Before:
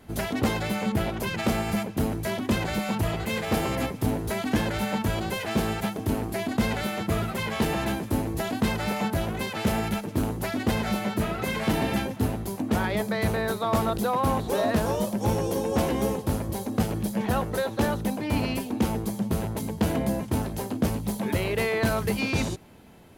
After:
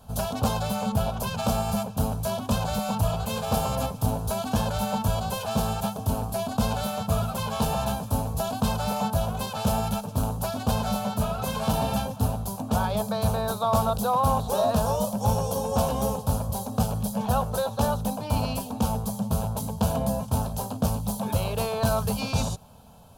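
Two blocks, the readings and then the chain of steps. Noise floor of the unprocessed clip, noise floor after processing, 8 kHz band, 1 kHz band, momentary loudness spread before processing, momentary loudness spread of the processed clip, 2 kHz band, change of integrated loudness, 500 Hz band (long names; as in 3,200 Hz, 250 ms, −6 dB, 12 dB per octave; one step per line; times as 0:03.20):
−38 dBFS, −38 dBFS, +3.5 dB, +3.5 dB, 4 LU, 5 LU, −7.5 dB, +0.5 dB, 0.0 dB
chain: phaser with its sweep stopped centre 820 Hz, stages 4
level +4 dB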